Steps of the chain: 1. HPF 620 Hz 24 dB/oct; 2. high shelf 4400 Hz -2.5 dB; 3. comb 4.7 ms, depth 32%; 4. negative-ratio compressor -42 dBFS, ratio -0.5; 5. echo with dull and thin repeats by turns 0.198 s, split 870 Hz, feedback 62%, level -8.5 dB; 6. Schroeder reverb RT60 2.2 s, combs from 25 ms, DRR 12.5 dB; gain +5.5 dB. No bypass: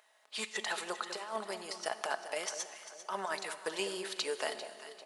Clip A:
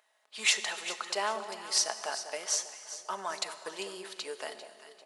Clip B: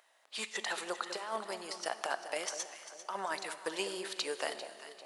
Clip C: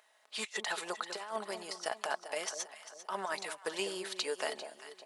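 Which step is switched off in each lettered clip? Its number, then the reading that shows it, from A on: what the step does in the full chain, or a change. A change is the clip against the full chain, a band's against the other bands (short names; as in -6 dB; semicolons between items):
4, momentary loudness spread change +8 LU; 3, 125 Hz band -1.5 dB; 6, echo-to-direct -8.5 dB to -10.5 dB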